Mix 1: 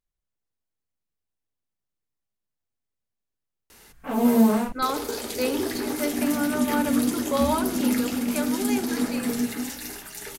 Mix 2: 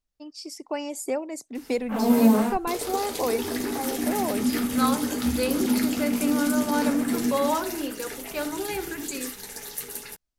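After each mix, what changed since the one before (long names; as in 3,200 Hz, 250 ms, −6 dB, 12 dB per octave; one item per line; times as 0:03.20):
first voice: unmuted
background: entry −2.15 s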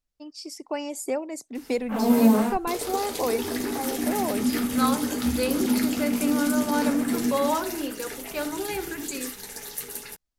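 nothing changed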